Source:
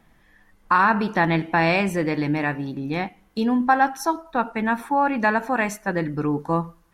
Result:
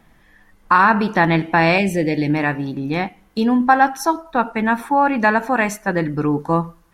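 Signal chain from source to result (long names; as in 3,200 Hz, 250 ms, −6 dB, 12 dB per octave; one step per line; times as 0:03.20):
0:01.78–0:02.30: Butterworth band-reject 1,200 Hz, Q 1
level +4.5 dB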